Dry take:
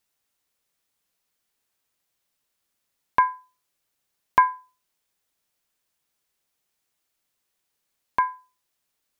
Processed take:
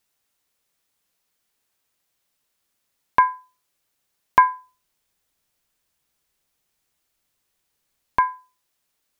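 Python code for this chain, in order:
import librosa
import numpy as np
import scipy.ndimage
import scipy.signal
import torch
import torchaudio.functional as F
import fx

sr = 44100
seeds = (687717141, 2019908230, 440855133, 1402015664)

y = fx.low_shelf(x, sr, hz=130.0, db=8.0, at=(4.51, 8.22))
y = F.gain(torch.from_numpy(y), 3.0).numpy()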